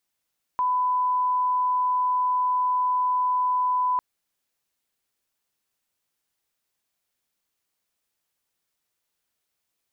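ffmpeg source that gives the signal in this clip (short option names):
-f lavfi -i "sine=f=1000:d=3.4:r=44100,volume=-1.94dB"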